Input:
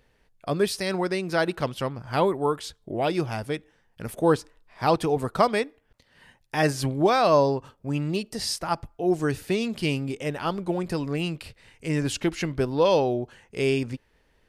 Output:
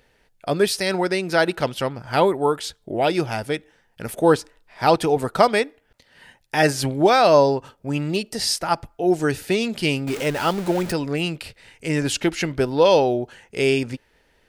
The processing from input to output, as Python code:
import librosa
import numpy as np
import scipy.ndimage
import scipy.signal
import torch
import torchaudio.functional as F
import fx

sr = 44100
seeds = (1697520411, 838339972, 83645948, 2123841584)

y = fx.zero_step(x, sr, step_db=-32.0, at=(10.07, 10.92))
y = fx.low_shelf(y, sr, hz=260.0, db=-6.5)
y = fx.notch(y, sr, hz=1100.0, q=7.8)
y = y * librosa.db_to_amplitude(6.5)